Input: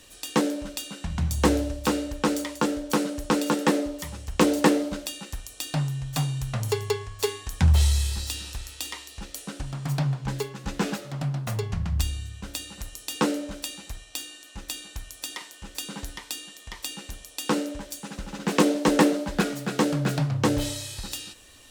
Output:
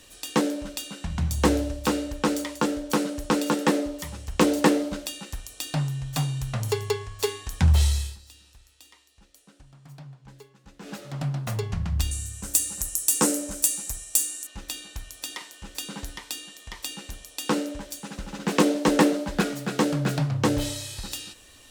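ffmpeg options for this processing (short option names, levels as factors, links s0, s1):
-filter_complex "[0:a]asettb=1/sr,asplit=3[s0][s1][s2];[s0]atrim=end=12.114[s3];[s1]atrim=start=12.11:end=14.47,asetpts=PTS-STARTPTS,afade=t=in:d=0.004:c=qsin,afade=t=out:st=2.356:d=0.004:c=qsin,highshelf=f=5500:t=q:w=1.5:g=14[s4];[s2]atrim=start=14.466[s5];[s3][s4]acrossfade=d=0.004:c1=hsin:c2=qsin[s6];[s6][s5]acrossfade=d=0.004:c1=qsin:c2=hsin,asplit=3[s7][s8][s9];[s7]atrim=end=8.18,asetpts=PTS-STARTPTS,afade=t=out:st=7.75:d=0.43:c=qsin:silence=0.11885[s10];[s8]atrim=start=8.18:end=10.82,asetpts=PTS-STARTPTS,volume=0.119[s11];[s9]atrim=start=10.82,asetpts=PTS-STARTPTS,afade=t=in:d=0.43:c=qsin:silence=0.11885[s12];[s10][s11][s12]concat=n=3:v=0:a=1"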